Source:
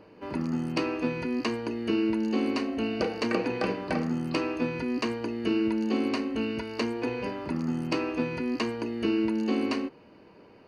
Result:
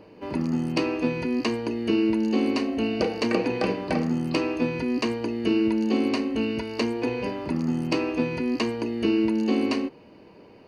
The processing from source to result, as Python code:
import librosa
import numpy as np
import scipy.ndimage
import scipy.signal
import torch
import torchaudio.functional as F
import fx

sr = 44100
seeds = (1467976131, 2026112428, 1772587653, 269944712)

y = fx.peak_eq(x, sr, hz=1400.0, db=-5.5, octaves=0.72)
y = y * 10.0 ** (4.0 / 20.0)